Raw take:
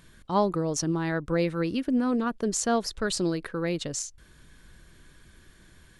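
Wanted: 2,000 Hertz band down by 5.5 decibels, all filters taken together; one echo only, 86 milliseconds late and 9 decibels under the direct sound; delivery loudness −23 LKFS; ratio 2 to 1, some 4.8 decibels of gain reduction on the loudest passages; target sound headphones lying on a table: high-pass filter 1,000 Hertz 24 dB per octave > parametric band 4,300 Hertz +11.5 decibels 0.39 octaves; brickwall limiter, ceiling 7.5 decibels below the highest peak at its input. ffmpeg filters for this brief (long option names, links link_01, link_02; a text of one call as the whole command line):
ffmpeg -i in.wav -af "equalizer=frequency=2000:width_type=o:gain=-8,acompressor=threshold=-29dB:ratio=2,alimiter=limit=-24dB:level=0:latency=1,highpass=frequency=1000:width=0.5412,highpass=frequency=1000:width=1.3066,equalizer=frequency=4300:width_type=o:width=0.39:gain=11.5,aecho=1:1:86:0.355,volume=13.5dB" out.wav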